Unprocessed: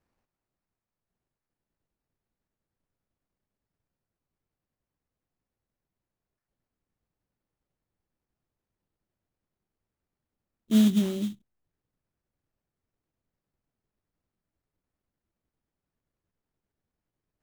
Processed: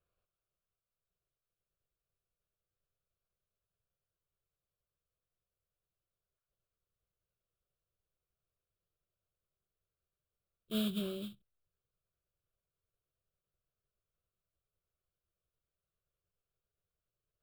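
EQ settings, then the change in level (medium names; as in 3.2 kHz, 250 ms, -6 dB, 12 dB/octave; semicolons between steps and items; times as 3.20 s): static phaser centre 1.3 kHz, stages 8; -4.0 dB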